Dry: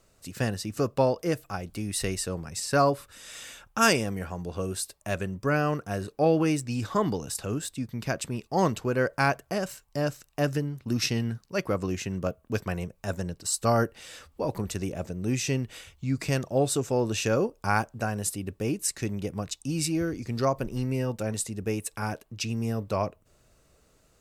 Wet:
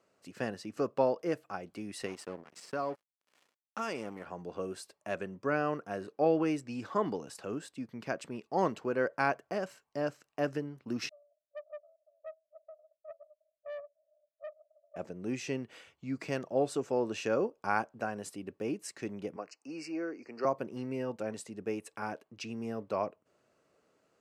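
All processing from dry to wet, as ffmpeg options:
-filter_complex "[0:a]asettb=1/sr,asplit=3[s0][s1][s2];[s0]atrim=end=2.064[s3];[s1]atrim=start=2.06:end=4.26,asetpts=PTS-STARTPTS,afade=t=in:d=0.004:c=qsin,afade=t=out:st=2.196:d=0.004:c=qsin,aeval=exprs='sgn(val(0))*max(abs(val(0))-0.0133,0)':c=same,bandreject=f=1600:w=21,acompressor=threshold=0.0501:ratio=4:attack=3.2:release=140:knee=1:detection=peak[s4];[s2]atrim=start=4.256[s5];[s3][s4]acrossfade=d=0.004:c1=hsin:c2=qsin[s6];[s6][s5]acrossfade=d=0.004:c1=qsin:c2=hsin,asettb=1/sr,asplit=3[s7][s8][s9];[s7]atrim=end=11.094[s10];[s8]atrim=start=11.09:end=14.96,asetpts=PTS-STARTPTS,afade=t=in:d=0.004:c=qsin,afade=t=out:st=3.866:d=0.004:c=qsin,asuperpass=centerf=620:order=8:qfactor=7.5,aeval=exprs='(tanh(50.1*val(0)+0.45)-tanh(0.45))/50.1':c=same[s11];[s9]atrim=start=14.956[s12];[s10][s11]acrossfade=d=0.004:c1=hsin:c2=qsin[s13];[s13][s12]acrossfade=d=0.004:c1=qsin:c2=hsin,asettb=1/sr,asplit=3[s14][s15][s16];[s14]atrim=end=19.364[s17];[s15]atrim=start=19.36:end=20.45,asetpts=PTS-STARTPTS,afade=t=in:d=0.004:c=qsin,afade=t=out:st=1.086:d=0.004:c=qsin,asuperstop=centerf=3500:order=8:qfactor=2.3,acrossover=split=280 6300:gain=0.0891 1 0.158[s18][s19][s20];[s18][s19][s20]amix=inputs=3:normalize=0[s21];[s16]atrim=start=20.446[s22];[s17][s21]acrossfade=d=0.004:c1=hsin:c2=qsin[s23];[s23][s22]acrossfade=d=0.004:c1=qsin:c2=hsin,highpass=250,aemphasis=mode=reproduction:type=75fm,bandreject=f=3700:w=16,volume=0.596"

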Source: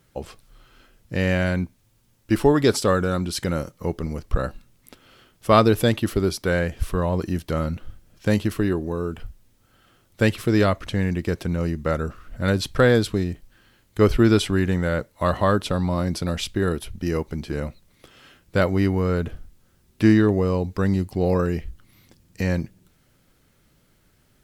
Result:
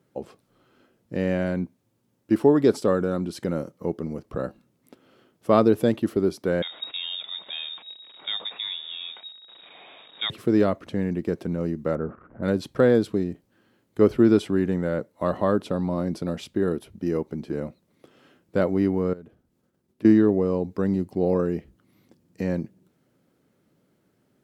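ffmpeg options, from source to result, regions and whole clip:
-filter_complex "[0:a]asettb=1/sr,asplit=3[s0][s1][s2];[s0]atrim=end=6.624[s3];[s1]atrim=start=6.62:end=10.3,asetpts=PTS-STARTPTS,afade=t=in:d=0.004:c=qsin,afade=t=out:st=3.676:d=0.004:c=qsin,aeval=exprs='val(0)+0.5*0.0251*sgn(val(0))':c=same,lowpass=f=3200:t=q:w=0.5098,lowpass=f=3200:t=q:w=0.6013,lowpass=f=3200:t=q:w=0.9,lowpass=f=3200:t=q:w=2.563,afreqshift=-3800[s4];[s2]atrim=start=10.296[s5];[s3][s4]acrossfade=d=0.004:c1=hsin:c2=qsin[s6];[s6][s5]acrossfade=d=0.004:c1=qsin:c2=hsin,asettb=1/sr,asplit=3[s7][s8][s9];[s7]atrim=end=11.954[s10];[s8]atrim=start=11.95:end=12.43,asetpts=PTS-STARTPTS,afade=t=in:d=0.004:c=qsin,afade=t=out:st=0.476:d=0.004:c=qsin,aeval=exprs='val(0)+0.5*0.0133*sgn(val(0))':c=same,lowpass=f=1700:w=0.5412,lowpass=f=1700:w=1.3066[s11];[s9]atrim=start=12.426[s12];[s10][s11]acrossfade=d=0.004:c1=hsin:c2=qsin[s13];[s13][s12]acrossfade=d=0.004:c1=qsin:c2=hsin,asettb=1/sr,asplit=3[s14][s15][s16];[s14]atrim=end=19.134[s17];[s15]atrim=start=19.13:end=20.05,asetpts=PTS-STARTPTS,afade=t=in:d=0.004:c=qsin,afade=t=out:st=0.916:d=0.004:c=qsin,acompressor=threshold=0.00282:ratio=2:attack=3.2:release=140:knee=1:detection=peak,agate=range=0.0224:threshold=0.00158:ratio=3:release=100:detection=peak,acrusher=bits=9:mode=log:mix=0:aa=0.000001[s18];[s16]atrim=start=20.046[s19];[s17][s18]acrossfade=d=0.004:c1=hsin:c2=qsin[s20];[s20][s19]acrossfade=d=0.004:c1=qsin:c2=hsin,highpass=220,tiltshelf=f=880:g=8,volume=0.596"

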